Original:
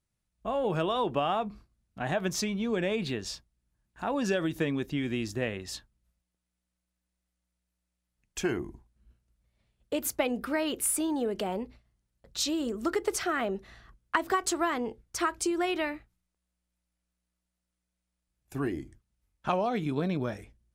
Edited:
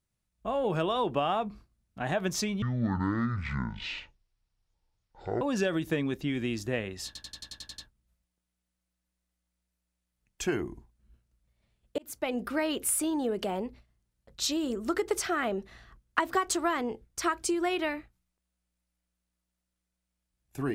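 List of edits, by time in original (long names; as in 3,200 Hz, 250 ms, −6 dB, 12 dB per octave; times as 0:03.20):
0:02.62–0:04.10: play speed 53%
0:05.75: stutter 0.09 s, 9 plays
0:09.95–0:10.37: fade in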